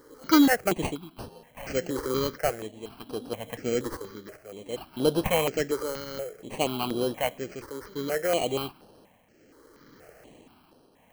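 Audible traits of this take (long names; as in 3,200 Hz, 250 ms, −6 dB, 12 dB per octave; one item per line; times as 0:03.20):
aliases and images of a low sample rate 3,600 Hz, jitter 0%
tremolo triangle 0.62 Hz, depth 75%
notches that jump at a steady rate 4.2 Hz 700–7,100 Hz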